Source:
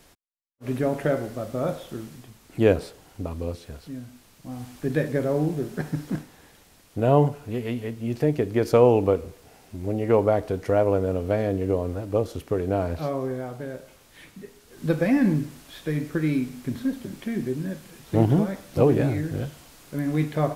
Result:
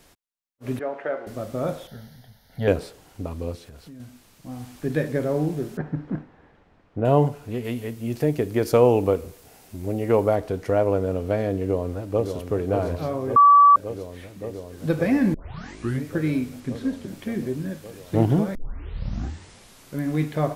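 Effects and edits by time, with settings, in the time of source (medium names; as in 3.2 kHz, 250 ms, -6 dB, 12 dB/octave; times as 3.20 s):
0.79–1.27 s: band-pass 560–2000 Hz
1.87–2.68 s: static phaser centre 1.7 kHz, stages 8
3.60–4.00 s: compression, threshold -39 dBFS
5.77–7.05 s: low-pass 1.6 kHz
7.64–10.36 s: treble shelf 7.8 kHz +9 dB
11.61–12.35 s: echo throw 570 ms, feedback 85%, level -7 dB
13.36–13.76 s: bleep 1.15 kHz -9 dBFS
15.34 s: tape start 0.70 s
16.60–17.08 s: low-pass 9.5 kHz
18.55 s: tape start 1.42 s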